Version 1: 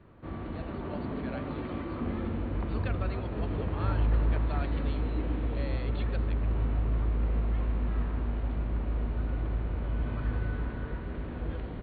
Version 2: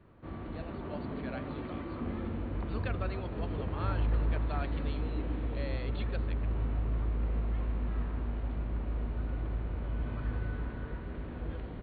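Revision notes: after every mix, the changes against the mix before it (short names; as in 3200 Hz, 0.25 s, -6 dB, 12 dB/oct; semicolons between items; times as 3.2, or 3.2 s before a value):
background -3.5 dB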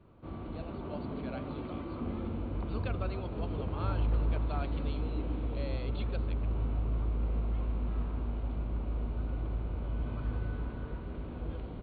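master: add bell 1800 Hz -10.5 dB 0.37 oct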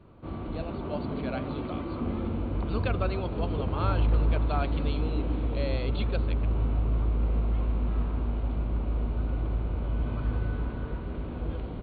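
speech +8.5 dB; background +5.5 dB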